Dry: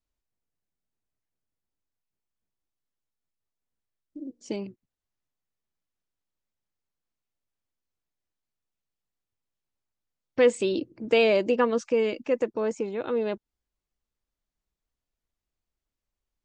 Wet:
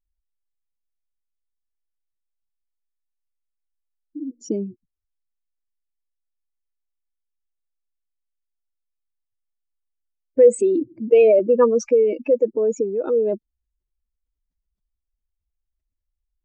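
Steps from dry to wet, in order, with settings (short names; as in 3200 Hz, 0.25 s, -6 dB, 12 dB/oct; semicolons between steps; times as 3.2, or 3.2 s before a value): spectral contrast raised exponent 2.2; 11.39–11.85 three-band expander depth 40%; gain +8 dB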